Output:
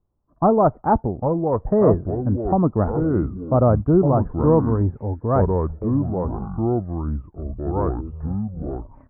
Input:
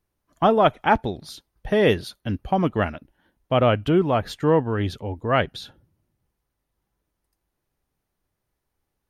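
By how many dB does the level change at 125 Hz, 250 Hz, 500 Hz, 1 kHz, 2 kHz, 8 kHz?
+7.5 dB, +5.5 dB, +2.5 dB, +0.5 dB, -14.5 dB, n/a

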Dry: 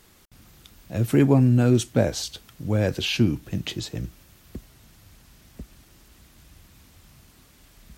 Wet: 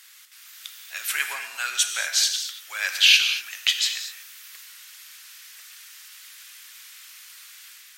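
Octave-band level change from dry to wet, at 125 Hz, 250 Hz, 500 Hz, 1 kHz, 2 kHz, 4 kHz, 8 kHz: under -40 dB, under -40 dB, under -20 dB, -1.5 dB, +11.5 dB, +12.5 dB, +11.5 dB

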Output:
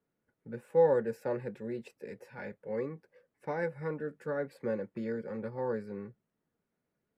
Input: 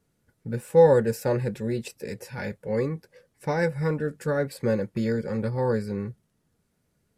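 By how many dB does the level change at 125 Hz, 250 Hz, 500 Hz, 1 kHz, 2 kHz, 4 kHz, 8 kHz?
-15.5 dB, -10.5 dB, -8.0 dB, -8.0 dB, -9.0 dB, under -15 dB, under -20 dB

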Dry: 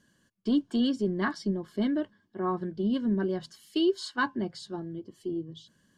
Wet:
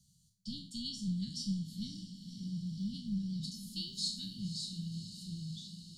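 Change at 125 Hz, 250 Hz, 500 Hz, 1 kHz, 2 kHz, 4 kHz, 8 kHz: -2.0 dB, -11.0 dB, under -40 dB, under -40 dB, under -30 dB, 0.0 dB, n/a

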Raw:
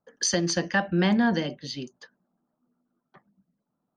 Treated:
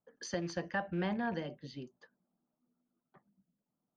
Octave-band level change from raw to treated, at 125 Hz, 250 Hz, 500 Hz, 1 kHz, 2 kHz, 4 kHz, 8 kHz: -12.0 dB, -13.5 dB, -10.0 dB, -9.5 dB, -12.0 dB, -17.5 dB, under -20 dB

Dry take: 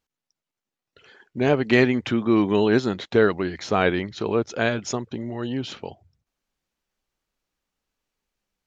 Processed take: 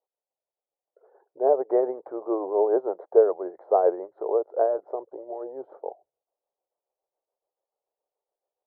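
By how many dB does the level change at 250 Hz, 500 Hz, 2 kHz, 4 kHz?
-12.5 dB, +0.5 dB, under -25 dB, under -40 dB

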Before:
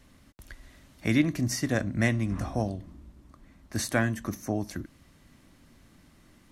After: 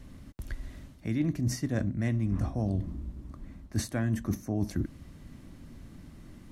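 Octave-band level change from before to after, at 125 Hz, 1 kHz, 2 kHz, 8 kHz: +1.0, -8.0, -11.0, -6.0 dB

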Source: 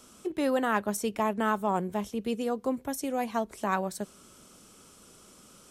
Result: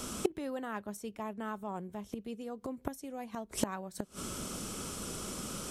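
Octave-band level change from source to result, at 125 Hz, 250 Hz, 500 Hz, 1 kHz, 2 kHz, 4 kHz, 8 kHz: -4.0, -7.5, -9.0, -11.5, -11.0, -0.5, +1.0 dB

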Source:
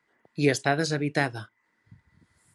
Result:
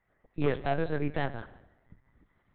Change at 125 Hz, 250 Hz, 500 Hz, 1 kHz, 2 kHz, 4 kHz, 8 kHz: -4.5 dB, -6.0 dB, -4.0 dB, -4.5 dB, -10.0 dB, -12.5 dB, under -40 dB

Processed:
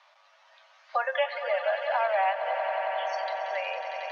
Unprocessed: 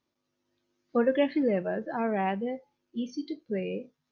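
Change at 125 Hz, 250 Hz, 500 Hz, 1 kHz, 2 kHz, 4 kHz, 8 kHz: under -40 dB, under -40 dB, +0.5 dB, +8.0 dB, +8.5 dB, +7.5 dB, n/a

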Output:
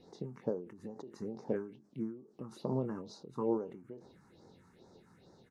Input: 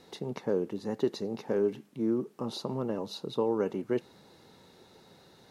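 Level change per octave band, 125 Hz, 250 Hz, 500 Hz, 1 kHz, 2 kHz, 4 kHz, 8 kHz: -3.0 dB, -6.5 dB, -8.5 dB, -6.5 dB, -11.0 dB, -16.5 dB, under -10 dB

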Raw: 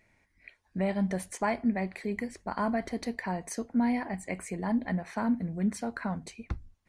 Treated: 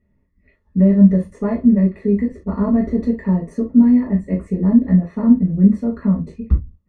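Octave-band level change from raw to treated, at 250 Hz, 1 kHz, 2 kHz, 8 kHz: +17.0 dB, -1.0 dB, n/a, under -10 dB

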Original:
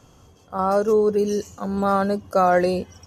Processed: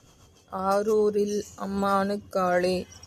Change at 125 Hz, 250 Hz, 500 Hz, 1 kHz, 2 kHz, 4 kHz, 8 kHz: -4.5, -4.5, -5.0, -5.5, -3.5, +0.5, -0.5 dB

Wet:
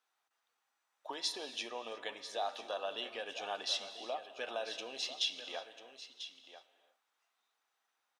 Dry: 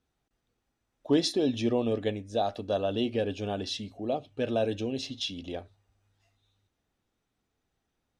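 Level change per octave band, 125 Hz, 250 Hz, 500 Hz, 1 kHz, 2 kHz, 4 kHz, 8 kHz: under -35 dB, -25.0 dB, -13.0 dB, -5.5 dB, -1.0 dB, -1.5 dB, -2.0 dB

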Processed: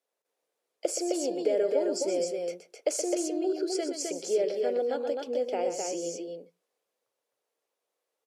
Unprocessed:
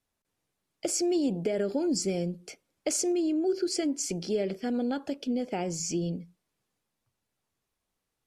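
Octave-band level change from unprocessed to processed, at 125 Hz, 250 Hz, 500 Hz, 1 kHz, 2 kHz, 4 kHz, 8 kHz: under -15 dB, -5.5 dB, +4.0 dB, +2.0 dB, -1.5 dB, -2.0 dB, -2.0 dB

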